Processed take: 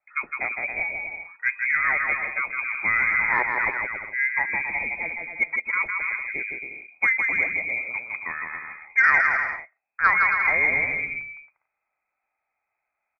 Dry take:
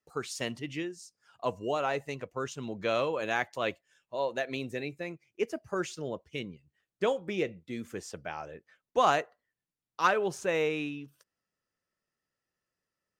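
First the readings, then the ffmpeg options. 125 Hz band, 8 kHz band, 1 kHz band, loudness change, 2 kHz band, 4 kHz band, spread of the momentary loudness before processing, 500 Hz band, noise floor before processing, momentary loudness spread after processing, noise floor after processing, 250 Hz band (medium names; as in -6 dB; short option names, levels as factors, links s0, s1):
no reading, under -15 dB, +4.5 dB, +10.0 dB, +17.5 dB, under -15 dB, 14 LU, -9.0 dB, under -85 dBFS, 12 LU, -82 dBFS, -8.5 dB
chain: -af "lowpass=f=2200:t=q:w=0.5098,lowpass=f=2200:t=q:w=0.6013,lowpass=f=2200:t=q:w=0.9,lowpass=f=2200:t=q:w=2.563,afreqshift=-2600,acontrast=65,aecho=1:1:160|272|350.4|405.3|443.7:0.631|0.398|0.251|0.158|0.1"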